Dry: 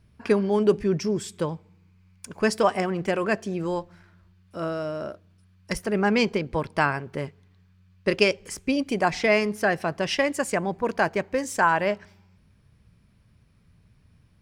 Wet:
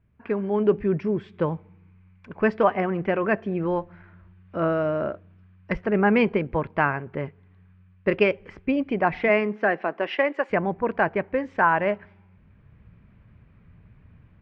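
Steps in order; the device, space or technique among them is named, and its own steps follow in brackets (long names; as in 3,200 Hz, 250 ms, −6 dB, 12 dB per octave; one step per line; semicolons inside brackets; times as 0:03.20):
0:09.28–0:10.49: high-pass filter 150 Hz → 370 Hz 24 dB per octave
action camera in a waterproof case (low-pass filter 2,500 Hz 24 dB per octave; automatic gain control gain up to 13 dB; level −6.5 dB; AAC 128 kbit/s 48,000 Hz)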